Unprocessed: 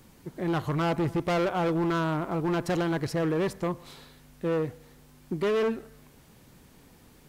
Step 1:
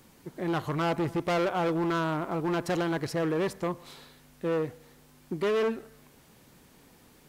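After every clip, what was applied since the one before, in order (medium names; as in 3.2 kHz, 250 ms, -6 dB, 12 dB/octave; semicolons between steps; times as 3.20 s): bass shelf 150 Hz -7.5 dB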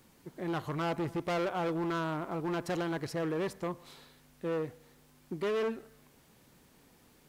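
crackle 580 per s -58 dBFS; trim -5 dB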